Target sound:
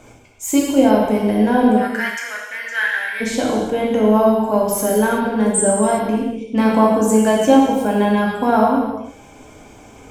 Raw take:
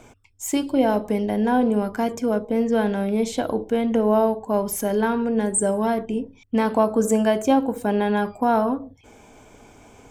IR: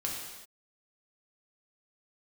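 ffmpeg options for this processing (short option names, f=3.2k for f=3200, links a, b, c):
-filter_complex "[0:a]asplit=3[a][b][c];[a]afade=t=out:st=1.76:d=0.02[d];[b]highpass=f=1.8k:t=q:w=13,afade=t=in:st=1.76:d=0.02,afade=t=out:st=3.2:d=0.02[e];[c]afade=t=in:st=3.2:d=0.02[f];[d][e][f]amix=inputs=3:normalize=0[g];[1:a]atrim=start_sample=2205[h];[g][h]afir=irnorm=-1:irlink=0,volume=2.5dB"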